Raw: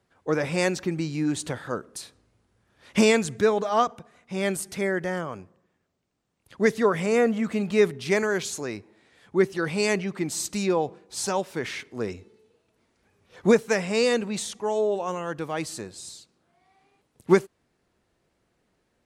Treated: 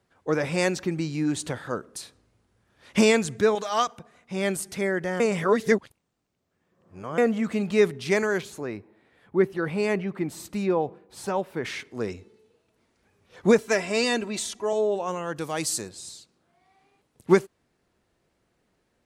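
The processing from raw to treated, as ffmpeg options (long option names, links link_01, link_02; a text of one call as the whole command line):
ffmpeg -i in.wav -filter_complex "[0:a]asettb=1/sr,asplit=3[link_01][link_02][link_03];[link_01]atrim=end=3.554[link_04];[link_02]atrim=start=3.55:end=3.98,asetpts=PTS-STARTPTS,afade=type=in:duration=0.004:curve=qsin,afade=type=out:start_time=0.426:duration=0.004:curve=qsin,tiltshelf=frequency=1300:gain=-7.5[link_05];[link_03]atrim=start=3.976[link_06];[link_04][link_05]acrossfade=duration=0.004:curve1=hsin:curve2=qsin[link_07];[link_07][link_06]acrossfade=duration=0.004:curve1=qsin:curve2=hsin,asettb=1/sr,asplit=3[link_08][link_09][link_10];[link_08]atrim=end=8.414[link_11];[link_09]atrim=start=8.41:end=11.65,asetpts=PTS-STARTPTS,afade=type=in:duration=0.004:curve=qsin,afade=type=out:start_time=3.236:duration=0.004:curve=qsin,equalizer=frequency=6400:width_type=o:width=1.8:gain=-14[link_12];[link_10]atrim=start=11.646[link_13];[link_11][link_12]acrossfade=duration=0.004:curve1=hsin:curve2=qsin[link_14];[link_14][link_13]acrossfade=duration=0.004:curve1=qsin:curve2=hsin,asettb=1/sr,asplit=3[link_15][link_16][link_17];[link_15]atrim=end=13.584[link_18];[link_16]atrim=start=13.58:end=14.73,asetpts=PTS-STARTPTS,afade=type=in:duration=0.004:curve=qsin,afade=type=out:start_time=1.146:duration=0.004:curve=qsin,aecho=1:1:3:0.59,atrim=end_sample=50715[link_19];[link_17]atrim=start=14.726[link_20];[link_18][link_19]acrossfade=duration=0.004:curve1=hsin:curve2=qsin[link_21];[link_21][link_20]acrossfade=duration=0.004:curve1=qsin:curve2=hsin,asettb=1/sr,asplit=3[link_22][link_23][link_24];[link_22]atrim=end=15.364[link_25];[link_23]atrim=start=15.36:end=15.89,asetpts=PTS-STARTPTS,afade=type=in:duration=0.004:curve=qsin,afade=type=out:start_time=0.526:duration=0.004:curve=qsin,bass=frequency=250:gain=0,treble=frequency=4000:gain=11[link_26];[link_24]atrim=start=15.886[link_27];[link_25][link_26]acrossfade=duration=0.004:curve1=hsin:curve2=qsin[link_28];[link_28][link_27]acrossfade=duration=0.004:curve1=qsin:curve2=hsin,asplit=3[link_29][link_30][link_31];[link_29]atrim=end=5.202[link_32];[link_30]atrim=start=5.198:end=7.182,asetpts=PTS-STARTPTS,areverse[link_33];[link_31]atrim=start=7.178[link_34];[link_32][link_33]acrossfade=duration=0.004:curve1=hsin:curve2=hsin[link_35];[link_35][link_34]acrossfade=duration=0.004:curve1=hsin:curve2=hsin" out.wav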